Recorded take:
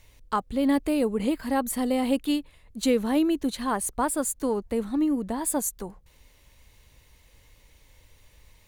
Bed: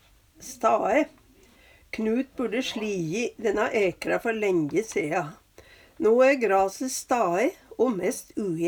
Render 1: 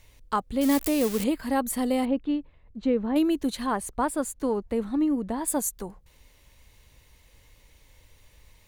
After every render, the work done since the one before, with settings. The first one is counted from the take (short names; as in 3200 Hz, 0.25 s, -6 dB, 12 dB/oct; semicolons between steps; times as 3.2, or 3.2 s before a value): 0.61–1.24 switching spikes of -19.5 dBFS; 2.05–3.16 tape spacing loss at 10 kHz 40 dB; 3.66–5.48 high shelf 5500 Hz -9 dB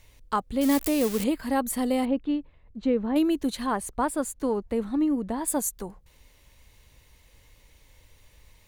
nothing audible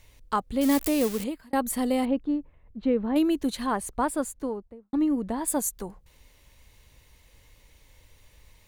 1.03–1.53 fade out; 2.19–3.11 bell 2300 Hz -> 12000 Hz -14.5 dB 0.95 oct; 4.15–4.93 studio fade out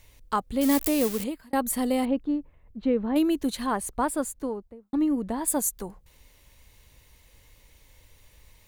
high shelf 10000 Hz +5 dB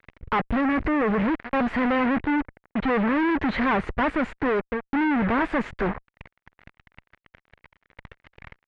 fuzz box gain 49 dB, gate -47 dBFS; ladder low-pass 2400 Hz, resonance 40%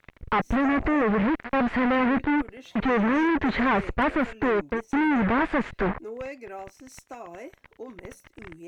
add bed -17.5 dB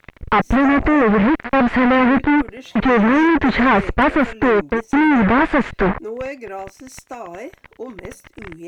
gain +8.5 dB